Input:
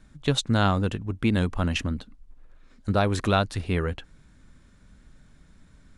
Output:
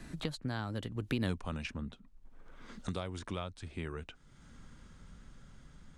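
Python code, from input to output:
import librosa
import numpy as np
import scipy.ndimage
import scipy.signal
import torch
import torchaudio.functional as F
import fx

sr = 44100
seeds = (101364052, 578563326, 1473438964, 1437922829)

y = fx.doppler_pass(x, sr, speed_mps=33, closest_m=2.8, pass_at_s=1.31)
y = fx.band_squash(y, sr, depth_pct=100)
y = y * librosa.db_to_amplitude(3.0)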